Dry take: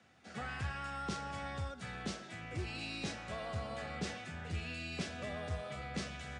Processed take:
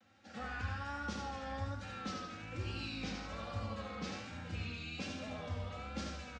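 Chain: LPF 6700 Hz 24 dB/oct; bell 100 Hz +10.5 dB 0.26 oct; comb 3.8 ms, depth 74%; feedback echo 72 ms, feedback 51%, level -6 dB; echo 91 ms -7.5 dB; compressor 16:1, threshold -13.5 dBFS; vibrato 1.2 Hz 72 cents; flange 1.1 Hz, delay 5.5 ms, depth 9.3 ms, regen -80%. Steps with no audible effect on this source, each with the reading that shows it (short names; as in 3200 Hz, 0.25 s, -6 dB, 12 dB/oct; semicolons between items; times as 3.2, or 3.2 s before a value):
compressor, threshold -13.5 dBFS: input peak -23.0 dBFS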